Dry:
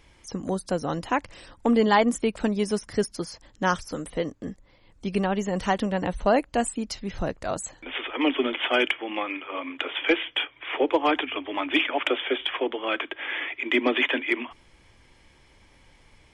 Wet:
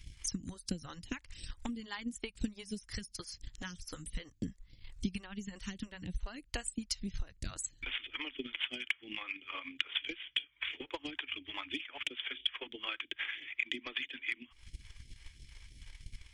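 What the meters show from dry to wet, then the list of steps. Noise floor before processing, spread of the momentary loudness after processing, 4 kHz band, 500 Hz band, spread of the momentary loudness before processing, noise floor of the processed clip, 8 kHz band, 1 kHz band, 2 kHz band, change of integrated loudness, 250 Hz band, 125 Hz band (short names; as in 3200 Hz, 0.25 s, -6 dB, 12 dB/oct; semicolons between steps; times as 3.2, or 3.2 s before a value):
-58 dBFS, 17 LU, -7.5 dB, -25.5 dB, 10 LU, -66 dBFS, -5.0 dB, -23.5 dB, -12.0 dB, -13.5 dB, -16.0 dB, -11.0 dB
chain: passive tone stack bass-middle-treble 6-0-2; compressor 4:1, threshold -58 dBFS, peak gain reduction 18 dB; transient shaper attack +11 dB, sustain -5 dB; phaser stages 2, 3 Hz, lowest notch 160–1200 Hz; gain +16 dB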